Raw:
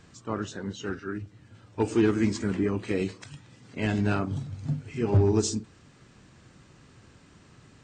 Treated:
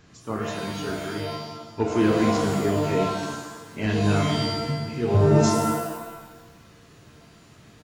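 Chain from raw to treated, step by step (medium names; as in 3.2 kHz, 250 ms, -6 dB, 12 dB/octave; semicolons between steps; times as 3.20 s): resampled via 16 kHz; pitch-shifted reverb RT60 1.1 s, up +7 st, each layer -2 dB, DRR 1.5 dB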